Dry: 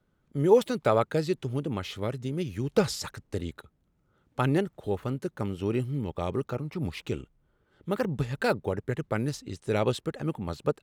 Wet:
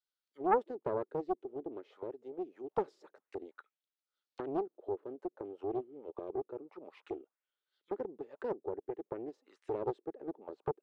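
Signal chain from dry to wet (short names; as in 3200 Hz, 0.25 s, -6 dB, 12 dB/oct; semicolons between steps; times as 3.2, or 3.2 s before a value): ladder high-pass 270 Hz, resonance 20%; auto-wah 360–4700 Hz, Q 2.8, down, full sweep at -36.5 dBFS; Doppler distortion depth 0.67 ms; gain +1 dB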